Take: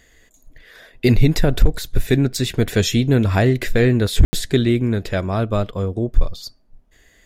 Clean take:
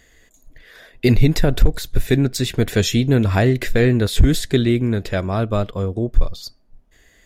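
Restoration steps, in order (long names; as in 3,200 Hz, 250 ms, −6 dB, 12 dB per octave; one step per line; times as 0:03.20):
ambience match 0:04.25–0:04.33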